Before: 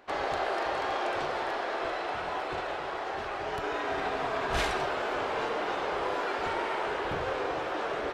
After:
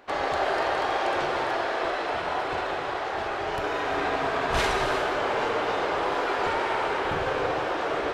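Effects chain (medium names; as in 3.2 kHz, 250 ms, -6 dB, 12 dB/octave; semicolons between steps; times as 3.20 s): gated-style reverb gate 400 ms flat, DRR 4 dB; trim +3.5 dB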